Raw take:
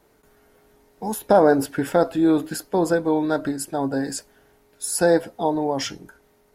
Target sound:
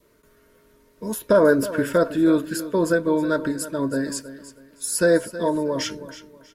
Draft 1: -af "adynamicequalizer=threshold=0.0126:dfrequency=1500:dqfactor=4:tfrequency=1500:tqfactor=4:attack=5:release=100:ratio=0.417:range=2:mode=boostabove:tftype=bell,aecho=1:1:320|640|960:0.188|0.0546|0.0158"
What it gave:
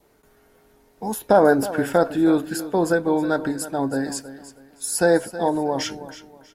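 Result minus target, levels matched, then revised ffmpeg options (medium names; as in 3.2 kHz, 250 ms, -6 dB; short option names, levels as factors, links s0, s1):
1 kHz band +5.5 dB
-af "adynamicequalizer=threshold=0.0126:dfrequency=1500:dqfactor=4:tfrequency=1500:tqfactor=4:attack=5:release=100:ratio=0.417:range=2:mode=boostabove:tftype=bell,asuperstop=centerf=780:order=12:qfactor=3.4,aecho=1:1:320|640|960:0.188|0.0546|0.0158"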